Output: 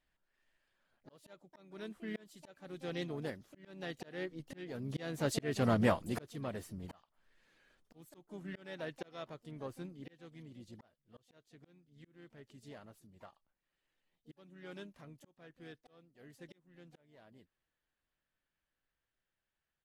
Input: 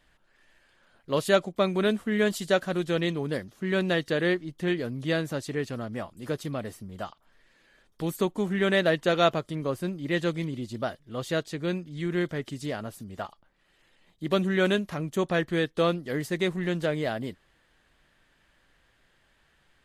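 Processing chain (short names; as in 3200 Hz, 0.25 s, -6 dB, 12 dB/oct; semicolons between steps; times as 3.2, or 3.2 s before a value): Doppler pass-by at 5.64, 7 m/s, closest 1.4 m; harmoniser -3 st -15 dB, +7 st -13 dB; auto swell 0.601 s; gain +11 dB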